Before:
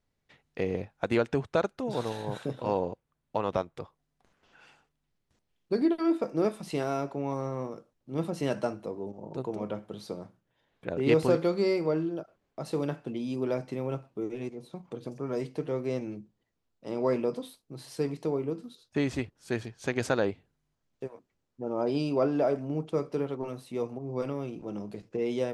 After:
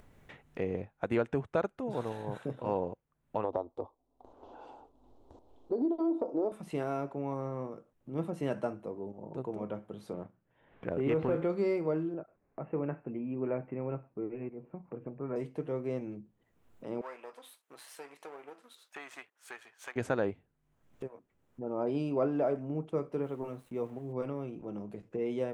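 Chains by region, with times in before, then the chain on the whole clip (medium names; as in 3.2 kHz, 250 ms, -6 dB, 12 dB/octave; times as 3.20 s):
3.44–6.52 s: FFT filter 100 Hz 0 dB, 180 Hz -16 dB, 250 Hz +6 dB, 920 Hz +8 dB, 1.8 kHz -21 dB, 2.5 kHz -16 dB, 3.9 kHz -1 dB, 12 kHz -16 dB + compression 4:1, threshold -24 dBFS
10.13–11.50 s: low-pass 3.2 kHz 24 dB/octave + waveshaping leveller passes 1 + compression 2.5:1, threshold -24 dBFS
12.14–15.36 s: steep low-pass 2.7 kHz 72 dB/octave + tape noise reduction on one side only decoder only
17.01–19.96 s: partial rectifier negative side -7 dB + high-pass 1.1 kHz
23.23–24.13 s: small samples zeroed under -51 dBFS + tape noise reduction on one side only decoder only
whole clip: peaking EQ 4.7 kHz -11.5 dB 0.98 oct; upward compressor, threshold -36 dBFS; treble shelf 6.1 kHz -5.5 dB; trim -3.5 dB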